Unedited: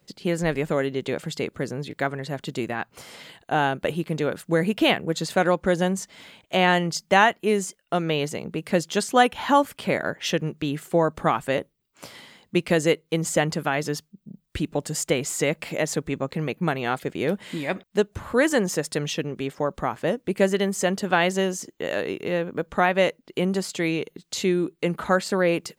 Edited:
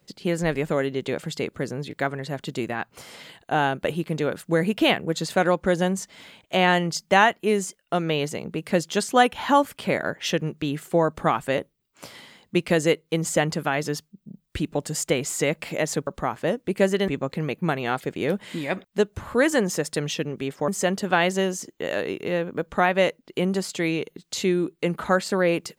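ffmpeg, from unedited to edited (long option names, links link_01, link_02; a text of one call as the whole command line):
ffmpeg -i in.wav -filter_complex "[0:a]asplit=4[link_01][link_02][link_03][link_04];[link_01]atrim=end=16.072[link_05];[link_02]atrim=start=19.668:end=20.682[link_06];[link_03]atrim=start=16.068:end=19.672[link_07];[link_04]atrim=start=20.678[link_08];[link_05][link_06]acrossfade=duration=0.004:curve1=hsin:curve2=hsin[link_09];[link_09][link_07]acrossfade=duration=0.004:curve1=hsin:curve2=hsin[link_10];[link_10][link_08]acrossfade=duration=0.004:curve1=hsin:curve2=hsin" out.wav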